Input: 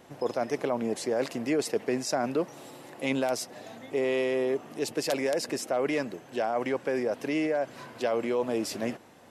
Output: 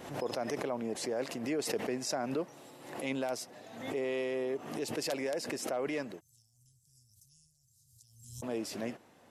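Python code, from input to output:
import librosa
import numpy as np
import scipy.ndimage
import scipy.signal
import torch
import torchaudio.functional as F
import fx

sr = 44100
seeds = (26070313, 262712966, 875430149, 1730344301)

y = fx.cheby2_bandstop(x, sr, low_hz=290.0, high_hz=2300.0, order=4, stop_db=60, at=(6.19, 8.42), fade=0.02)
y = fx.pre_swell(y, sr, db_per_s=70.0)
y = y * librosa.db_to_amplitude(-7.0)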